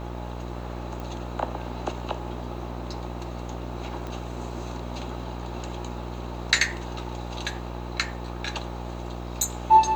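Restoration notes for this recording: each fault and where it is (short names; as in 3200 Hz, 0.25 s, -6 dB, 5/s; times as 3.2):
buzz 60 Hz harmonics 21 -35 dBFS
1 pop
4.07 pop -22 dBFS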